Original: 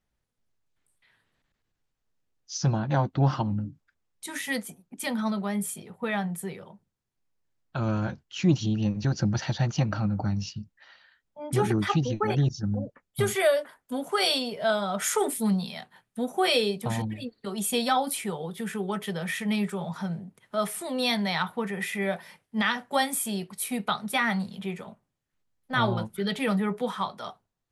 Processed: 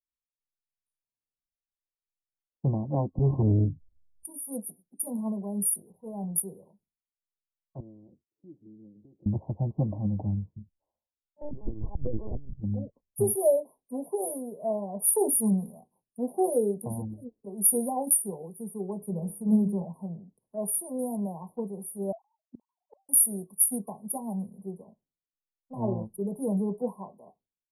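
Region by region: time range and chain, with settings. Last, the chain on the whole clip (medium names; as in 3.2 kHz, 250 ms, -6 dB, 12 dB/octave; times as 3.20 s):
3.18–4.25 s: RIAA curve playback + compression 10:1, threshold -15 dBFS + transformer saturation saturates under 250 Hz
5.92–6.39 s: transient shaper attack -7 dB, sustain +8 dB + tape noise reduction on one side only decoder only
7.80–9.26 s: compression 10:1, threshold -34 dBFS + band-pass filter 350 Hz, Q 2.1 + tilt EQ -2 dB/octave
11.41–12.60 s: compressor with a negative ratio -30 dBFS, ratio -0.5 + LPC vocoder at 8 kHz pitch kept
19.00–19.82 s: tone controls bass +7 dB, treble -2 dB + de-hum 68.02 Hz, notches 39
22.12–23.09 s: formants replaced by sine waves + inverted gate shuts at -26 dBFS, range -33 dB
whole clip: FFT band-reject 1.1–9.1 kHz; graphic EQ 125/1000/2000/8000 Hz -6/-11/-7/+9 dB; three bands expanded up and down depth 70%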